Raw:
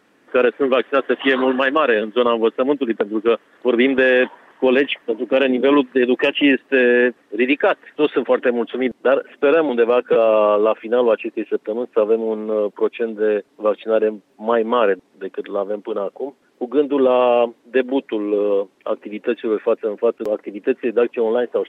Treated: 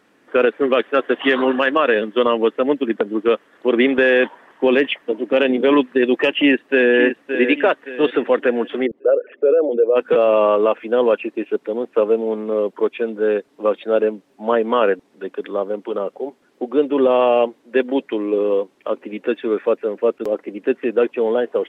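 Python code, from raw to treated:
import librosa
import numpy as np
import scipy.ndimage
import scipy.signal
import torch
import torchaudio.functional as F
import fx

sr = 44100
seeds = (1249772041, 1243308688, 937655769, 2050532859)

y = fx.echo_throw(x, sr, start_s=6.34, length_s=0.62, ms=570, feedback_pct=40, wet_db=-8.5)
y = fx.envelope_sharpen(y, sr, power=2.0, at=(8.85, 9.95), fade=0.02)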